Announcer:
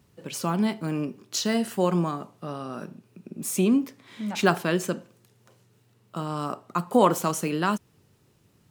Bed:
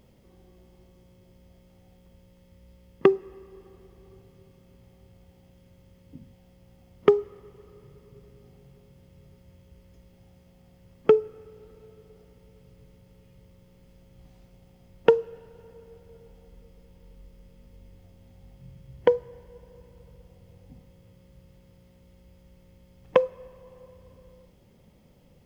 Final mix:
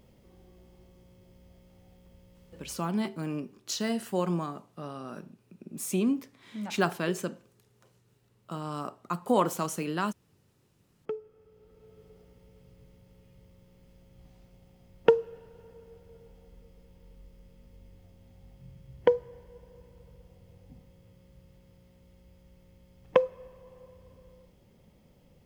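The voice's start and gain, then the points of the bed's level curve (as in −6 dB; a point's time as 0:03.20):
2.35 s, −5.5 dB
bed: 0:02.73 −1 dB
0:02.95 −23.5 dB
0:10.77 −23.5 dB
0:12.01 −2.5 dB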